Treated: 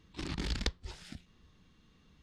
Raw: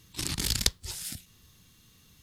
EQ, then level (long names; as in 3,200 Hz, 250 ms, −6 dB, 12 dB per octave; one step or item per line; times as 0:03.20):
head-to-tape spacing loss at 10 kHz 29 dB
parametric band 110 Hz −11.5 dB 0.59 octaves
+1.0 dB